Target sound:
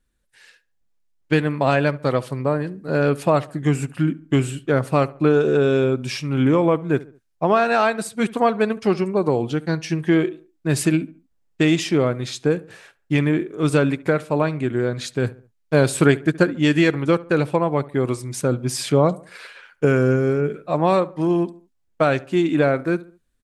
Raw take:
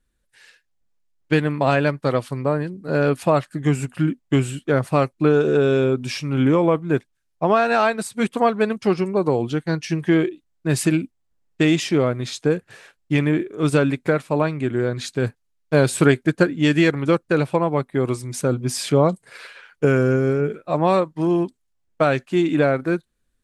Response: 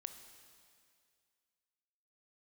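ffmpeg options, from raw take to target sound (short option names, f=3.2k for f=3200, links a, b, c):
-filter_complex "[0:a]asplit=2[a][b];[b]adelay=70,lowpass=f=1.9k:p=1,volume=-19dB,asplit=2[c][d];[d]adelay=70,lowpass=f=1.9k:p=1,volume=0.42,asplit=2[e][f];[f]adelay=70,lowpass=f=1.9k:p=1,volume=0.42[g];[a][c][e][g]amix=inputs=4:normalize=0"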